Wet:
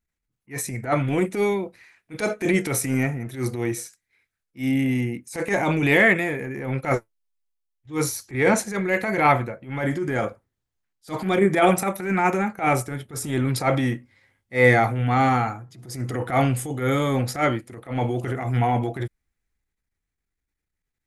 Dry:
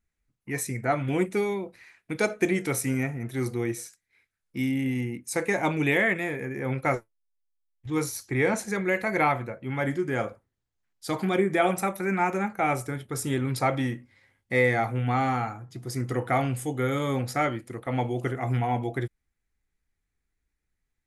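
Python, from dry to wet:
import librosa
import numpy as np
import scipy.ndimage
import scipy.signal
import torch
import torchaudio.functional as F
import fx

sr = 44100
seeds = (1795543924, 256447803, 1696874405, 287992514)

y = fx.transient(x, sr, attack_db=-11, sustain_db=4)
y = fx.upward_expand(y, sr, threshold_db=-43.0, expansion=1.5)
y = y * 10.0 ** (8.5 / 20.0)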